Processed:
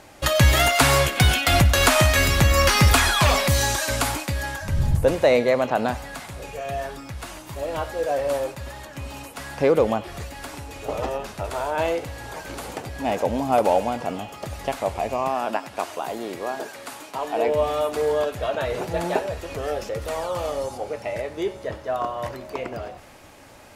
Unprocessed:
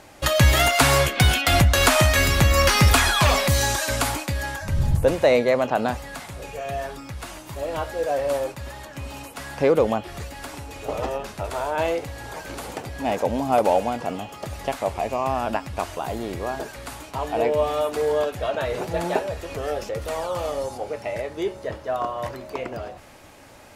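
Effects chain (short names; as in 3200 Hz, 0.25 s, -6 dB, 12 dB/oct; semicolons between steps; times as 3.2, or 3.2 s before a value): 15.28–17.48 HPF 240 Hz 12 dB/oct; thinning echo 93 ms, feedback 71%, high-pass 600 Hz, level -18 dB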